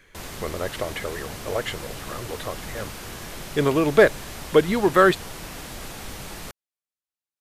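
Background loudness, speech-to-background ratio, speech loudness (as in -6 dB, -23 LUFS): -36.5 LUFS, 14.5 dB, -22.0 LUFS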